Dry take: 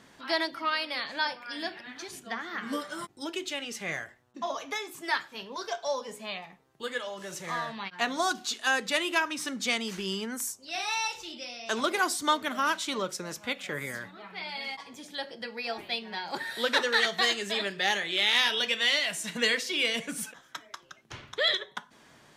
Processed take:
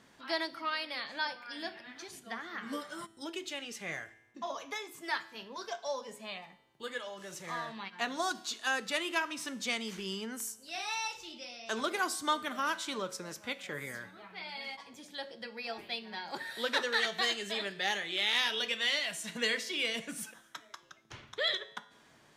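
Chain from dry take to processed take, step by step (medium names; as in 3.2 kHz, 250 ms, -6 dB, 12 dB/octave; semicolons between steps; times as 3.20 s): feedback comb 110 Hz, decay 1 s, harmonics all, mix 50%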